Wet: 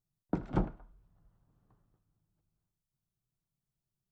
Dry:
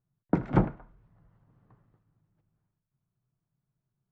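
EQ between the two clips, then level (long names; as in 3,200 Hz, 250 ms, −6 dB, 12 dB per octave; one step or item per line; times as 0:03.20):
octave-band graphic EQ 125/250/500/1,000/2,000 Hz −9/−5/−6/−5/−11 dB
0.0 dB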